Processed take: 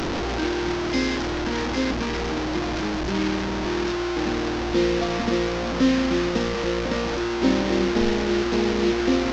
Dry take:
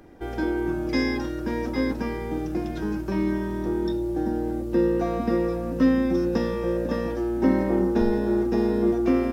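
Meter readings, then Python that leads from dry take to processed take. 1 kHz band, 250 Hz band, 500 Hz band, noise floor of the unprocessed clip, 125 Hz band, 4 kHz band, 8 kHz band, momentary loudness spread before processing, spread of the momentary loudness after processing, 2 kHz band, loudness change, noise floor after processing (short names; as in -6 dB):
+5.0 dB, 0.0 dB, +0.5 dB, -31 dBFS, +1.0 dB, +13.5 dB, n/a, 7 LU, 5 LU, +7.0 dB, +1.0 dB, -26 dBFS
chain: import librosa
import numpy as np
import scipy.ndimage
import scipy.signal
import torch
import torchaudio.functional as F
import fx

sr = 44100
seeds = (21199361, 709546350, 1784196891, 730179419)

y = fx.delta_mod(x, sr, bps=32000, step_db=-20.0)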